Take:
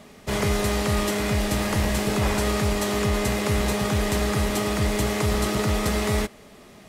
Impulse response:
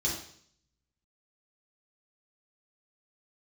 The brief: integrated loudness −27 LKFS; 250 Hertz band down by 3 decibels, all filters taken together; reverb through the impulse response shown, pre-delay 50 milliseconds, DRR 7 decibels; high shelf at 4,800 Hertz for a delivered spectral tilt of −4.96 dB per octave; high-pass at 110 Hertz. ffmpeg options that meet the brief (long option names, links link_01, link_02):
-filter_complex "[0:a]highpass=110,equalizer=frequency=250:width_type=o:gain=-3.5,highshelf=frequency=4800:gain=-7,asplit=2[link_01][link_02];[1:a]atrim=start_sample=2205,adelay=50[link_03];[link_02][link_03]afir=irnorm=-1:irlink=0,volume=-13dB[link_04];[link_01][link_04]amix=inputs=2:normalize=0,volume=-2dB"